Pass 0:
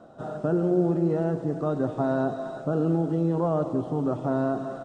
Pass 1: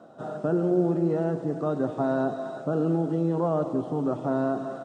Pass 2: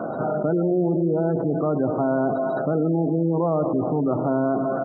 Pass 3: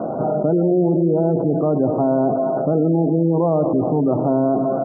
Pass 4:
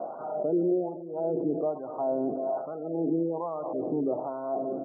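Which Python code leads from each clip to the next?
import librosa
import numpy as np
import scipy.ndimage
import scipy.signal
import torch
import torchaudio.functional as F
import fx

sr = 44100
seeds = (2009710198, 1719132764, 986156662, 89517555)

y1 = scipy.signal.sosfilt(scipy.signal.butter(2, 140.0, 'highpass', fs=sr, output='sos'), x)
y2 = fx.spec_gate(y1, sr, threshold_db=-25, keep='strong')
y2 = fx.env_flatten(y2, sr, amount_pct=70)
y3 = scipy.signal.sosfilt(scipy.signal.butter(4, 1000.0, 'lowpass', fs=sr, output='sos'), y2)
y3 = y3 * 10.0 ** (4.5 / 20.0)
y4 = fx.wah_lfo(y3, sr, hz=1.2, low_hz=330.0, high_hz=1200.0, q=2.0)
y4 = y4 * 10.0 ** (-6.5 / 20.0)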